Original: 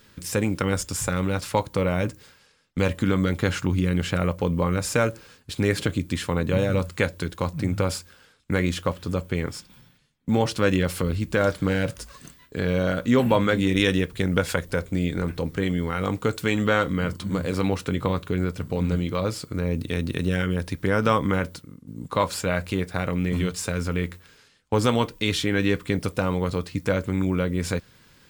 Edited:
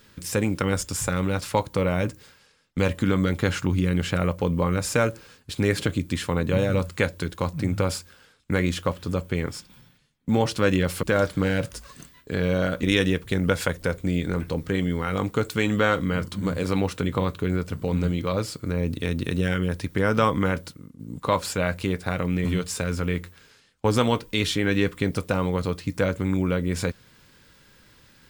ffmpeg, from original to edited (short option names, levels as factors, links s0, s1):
-filter_complex "[0:a]asplit=3[s0][s1][s2];[s0]atrim=end=11.032[s3];[s1]atrim=start=11.278:end=13.082[s4];[s2]atrim=start=13.708[s5];[s3][s4]acrossfade=d=0.004:c1=hsin:c2=hsin[s6];[s6][s5]acrossfade=d=0.004:c1=hsin:c2=hsin"